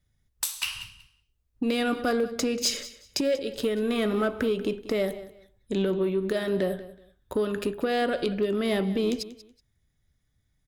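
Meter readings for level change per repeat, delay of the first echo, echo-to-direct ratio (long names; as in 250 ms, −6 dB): −13.0 dB, 187 ms, −16.5 dB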